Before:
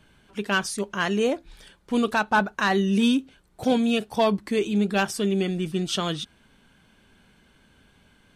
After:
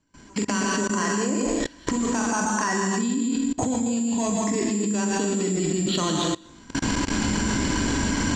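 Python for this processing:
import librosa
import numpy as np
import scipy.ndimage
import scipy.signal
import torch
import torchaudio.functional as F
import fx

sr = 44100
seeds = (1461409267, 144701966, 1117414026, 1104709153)

y = fx.recorder_agc(x, sr, target_db=-14.5, rise_db_per_s=48.0, max_gain_db=30)
y = fx.high_shelf(y, sr, hz=2300.0, db=-4.5)
y = fx.doubler(y, sr, ms=43.0, db=-6)
y = fx.rev_plate(y, sr, seeds[0], rt60_s=1.1, hf_ratio=0.95, predelay_ms=105, drr_db=1.0)
y = (np.kron(scipy.signal.resample_poly(y, 1, 6), np.eye(6)[0]) * 6)[:len(y)]
y = scipy.signal.sosfilt(scipy.signal.butter(4, 5500.0, 'lowpass', fs=sr, output='sos'), y)
y = fx.small_body(y, sr, hz=(290.0, 1000.0, 1900.0), ring_ms=55, db=13)
y = fx.level_steps(y, sr, step_db=24)
y = fx.peak_eq(y, sr, hz=94.0, db=4.0, octaves=0.77)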